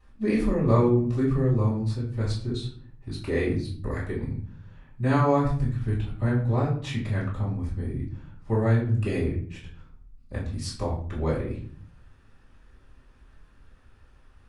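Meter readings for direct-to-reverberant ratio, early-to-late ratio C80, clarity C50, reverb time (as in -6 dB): -8.5 dB, 10.5 dB, 6.0 dB, 0.50 s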